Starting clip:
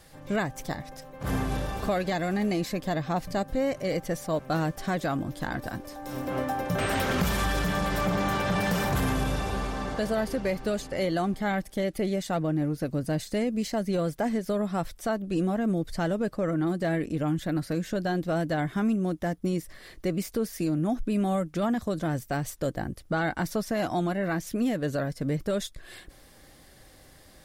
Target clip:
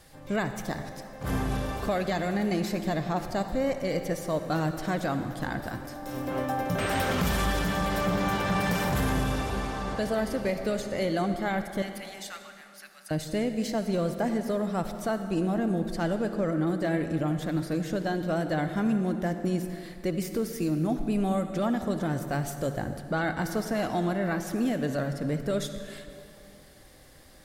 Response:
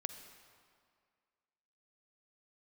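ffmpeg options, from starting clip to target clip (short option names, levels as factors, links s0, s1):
-filter_complex "[0:a]asettb=1/sr,asplit=3[s0][s1][s2];[s0]atrim=end=11.824[s3];[s1]atrim=start=11.82:end=13.11,asetpts=PTS-STARTPTS,afade=t=in:d=0.004:c=qsin,afade=t=out:st=1.286:d=0.004:c=qsin,highpass=f=1400:w=0.5412,highpass=f=1400:w=1.3066[s4];[s2]atrim=start=13.106[s5];[s3][s4]acrossfade=d=0.004:c1=hsin:c2=qsin[s6];[s6][s5]acrossfade=d=0.004:c1=qsin:c2=hsin[s7];[1:a]atrim=start_sample=2205,asetrate=35721,aresample=44100[s8];[s7][s8]afir=irnorm=-1:irlink=0"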